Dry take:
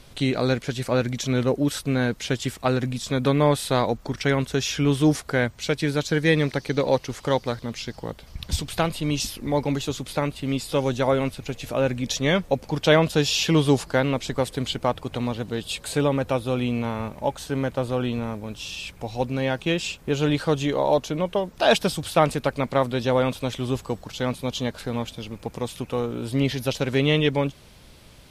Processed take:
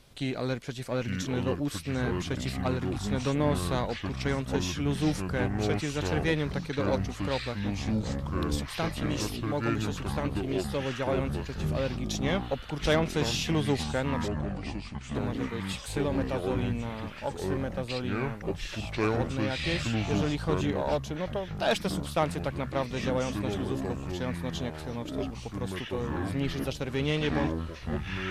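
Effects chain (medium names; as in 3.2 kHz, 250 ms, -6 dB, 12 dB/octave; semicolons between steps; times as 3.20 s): 14.28–15.15 s: Butterworth band-pass 210 Hz, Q 7.9; Chebyshev shaper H 6 -21 dB, 8 -32 dB, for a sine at -4.5 dBFS; ever faster or slower copies 777 ms, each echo -6 st, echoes 3; trim -8.5 dB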